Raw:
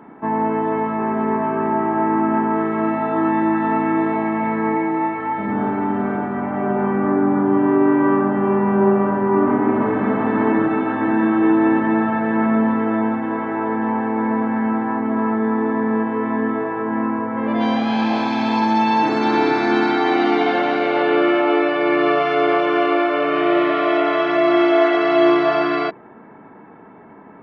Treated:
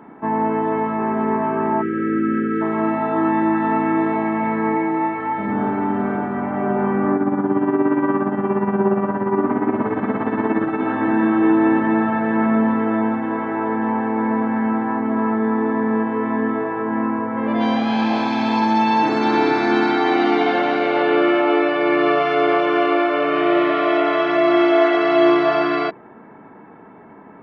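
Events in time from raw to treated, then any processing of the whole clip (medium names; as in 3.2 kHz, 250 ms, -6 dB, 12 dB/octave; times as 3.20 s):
1.82–2.62 s: spectral selection erased 570–1200 Hz
7.16–10.82 s: tremolo 17 Hz, depth 59%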